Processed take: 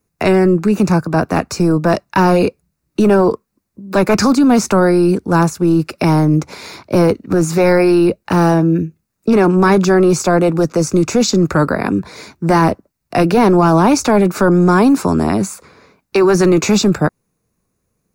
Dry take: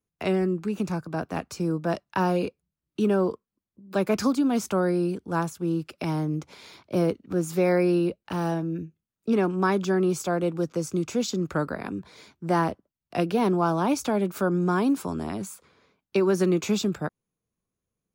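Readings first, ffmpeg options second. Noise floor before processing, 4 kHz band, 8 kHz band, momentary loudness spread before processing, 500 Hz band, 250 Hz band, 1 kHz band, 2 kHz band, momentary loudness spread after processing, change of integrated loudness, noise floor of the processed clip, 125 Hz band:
under -85 dBFS, +13.0 dB, +14.0 dB, 10 LU, +12.5 dB, +13.0 dB, +13.0 dB, +13.0 dB, 9 LU, +12.5 dB, -72 dBFS, +13.5 dB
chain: -filter_complex "[0:a]equalizer=f=3.2k:w=5:g=-12.5,acrossover=split=8000[a][b];[b]acompressor=threshold=-51dB:ratio=4:attack=1:release=60[c];[a][c]amix=inputs=2:normalize=0,apsyclip=22.5dB,volume=-6dB"

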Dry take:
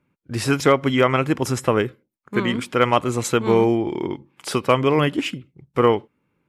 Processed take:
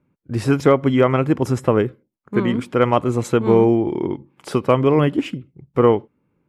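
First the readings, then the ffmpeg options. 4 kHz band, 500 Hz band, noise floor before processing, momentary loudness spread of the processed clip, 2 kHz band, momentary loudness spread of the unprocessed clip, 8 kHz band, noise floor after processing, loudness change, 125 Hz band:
-6.5 dB, +2.5 dB, -72 dBFS, 11 LU, -4.0 dB, 11 LU, -7.5 dB, -70 dBFS, +2.0 dB, +4.0 dB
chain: -af "tiltshelf=f=1.3k:g=6,volume=-2dB"

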